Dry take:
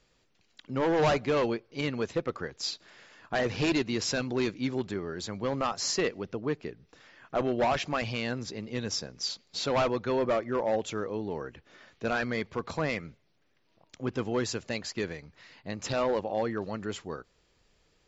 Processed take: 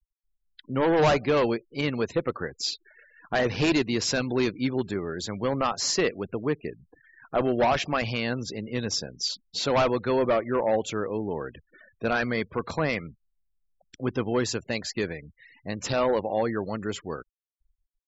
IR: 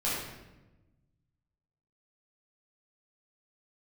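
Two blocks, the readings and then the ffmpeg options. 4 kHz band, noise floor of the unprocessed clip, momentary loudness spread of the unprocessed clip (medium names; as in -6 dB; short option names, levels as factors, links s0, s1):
+4.0 dB, -69 dBFS, 10 LU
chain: -af "afftfilt=real='re*gte(hypot(re,im),0.00501)':imag='im*gte(hypot(re,im),0.00501)':win_size=1024:overlap=0.75,volume=1.58"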